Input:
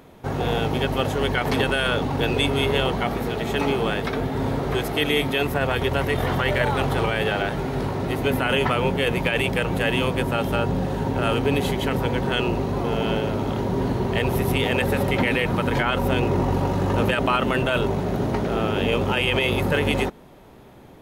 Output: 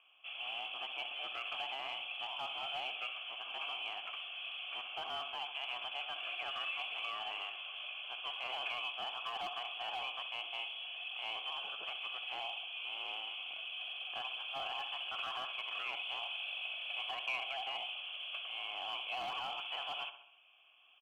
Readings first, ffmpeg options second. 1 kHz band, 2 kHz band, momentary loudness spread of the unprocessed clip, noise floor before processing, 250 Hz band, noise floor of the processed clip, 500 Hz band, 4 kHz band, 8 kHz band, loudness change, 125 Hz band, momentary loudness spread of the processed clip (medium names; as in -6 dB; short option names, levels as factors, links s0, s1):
-16.5 dB, -15.0 dB, 4 LU, -46 dBFS, under -40 dB, -58 dBFS, -29.0 dB, -8.5 dB, under -25 dB, -17.0 dB, under -40 dB, 4 LU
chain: -filter_complex "[0:a]lowshelf=f=250:g=-7.5,aecho=1:1:66|132|198|264|330:0.224|0.116|0.0605|0.0315|0.0164,lowpass=f=3000:t=q:w=0.5098,lowpass=f=3000:t=q:w=0.6013,lowpass=f=3000:t=q:w=0.9,lowpass=f=3000:t=q:w=2.563,afreqshift=-3500,asplit=2[s0][s1];[s1]aeval=exprs='0.0708*(abs(mod(val(0)/0.0708+3,4)-2)-1)':c=same,volume=0.282[s2];[s0][s2]amix=inputs=2:normalize=0,asplit=3[s3][s4][s5];[s3]bandpass=f=730:t=q:w=8,volume=1[s6];[s4]bandpass=f=1090:t=q:w=8,volume=0.501[s7];[s5]bandpass=f=2440:t=q:w=8,volume=0.355[s8];[s6][s7][s8]amix=inputs=3:normalize=0,acrossover=split=2100[s9][s10];[s9]volume=59.6,asoftclip=hard,volume=0.0168[s11];[s11][s10]amix=inputs=2:normalize=0,volume=0.668"